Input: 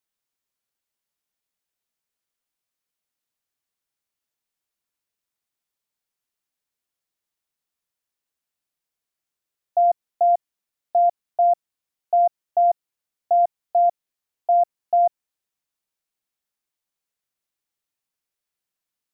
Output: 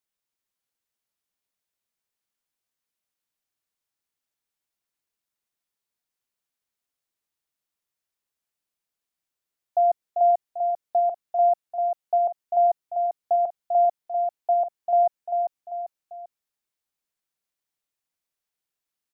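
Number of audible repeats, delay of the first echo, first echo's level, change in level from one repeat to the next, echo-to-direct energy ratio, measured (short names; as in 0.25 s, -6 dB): 3, 0.394 s, -6.0 dB, -7.0 dB, -5.0 dB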